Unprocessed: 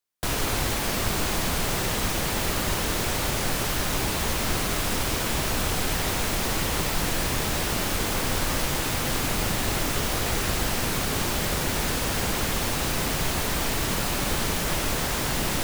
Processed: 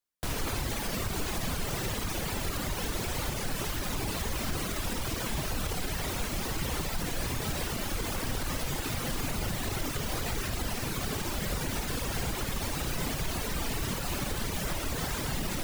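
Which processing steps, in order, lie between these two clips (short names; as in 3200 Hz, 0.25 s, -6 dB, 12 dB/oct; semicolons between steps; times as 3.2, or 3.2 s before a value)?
low shelf 280 Hz +4.5 dB; reverb removal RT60 1.5 s; limiter -18.5 dBFS, peak gain reduction 7 dB; flutter echo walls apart 9.4 m, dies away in 0.32 s; gain -4 dB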